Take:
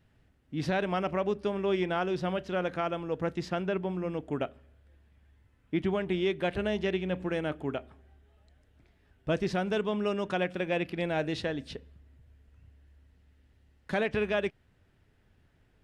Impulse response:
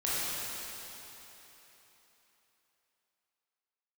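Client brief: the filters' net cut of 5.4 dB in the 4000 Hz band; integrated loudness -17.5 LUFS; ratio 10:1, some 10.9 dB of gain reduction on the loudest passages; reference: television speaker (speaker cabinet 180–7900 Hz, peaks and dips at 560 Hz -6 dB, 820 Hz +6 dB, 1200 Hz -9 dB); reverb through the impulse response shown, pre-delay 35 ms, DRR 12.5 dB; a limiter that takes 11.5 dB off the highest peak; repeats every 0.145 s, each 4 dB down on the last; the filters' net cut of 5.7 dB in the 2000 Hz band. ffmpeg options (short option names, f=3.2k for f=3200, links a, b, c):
-filter_complex "[0:a]equalizer=f=2k:t=o:g=-5,equalizer=f=4k:t=o:g=-5,acompressor=threshold=-36dB:ratio=10,alimiter=level_in=14dB:limit=-24dB:level=0:latency=1,volume=-14dB,aecho=1:1:145|290|435|580|725|870|1015|1160|1305:0.631|0.398|0.25|0.158|0.0994|0.0626|0.0394|0.0249|0.0157,asplit=2[a][b];[1:a]atrim=start_sample=2205,adelay=35[c];[b][c]afir=irnorm=-1:irlink=0,volume=-22dB[d];[a][d]amix=inputs=2:normalize=0,highpass=f=180:w=0.5412,highpass=f=180:w=1.3066,equalizer=f=560:t=q:w=4:g=-6,equalizer=f=820:t=q:w=4:g=6,equalizer=f=1.2k:t=q:w=4:g=-9,lowpass=f=7.9k:w=0.5412,lowpass=f=7.9k:w=1.3066,volume=29.5dB"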